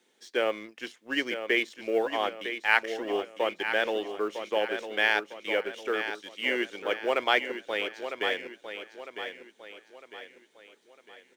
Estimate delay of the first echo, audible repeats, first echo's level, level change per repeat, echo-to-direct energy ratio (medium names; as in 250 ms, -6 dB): 954 ms, 4, -9.0 dB, -7.5 dB, -8.0 dB